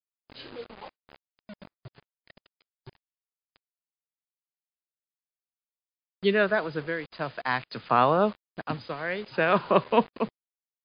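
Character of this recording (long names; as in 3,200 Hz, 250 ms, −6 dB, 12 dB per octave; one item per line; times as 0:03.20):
tremolo triangle 0.53 Hz, depth 85%
a quantiser's noise floor 8 bits, dither none
MP3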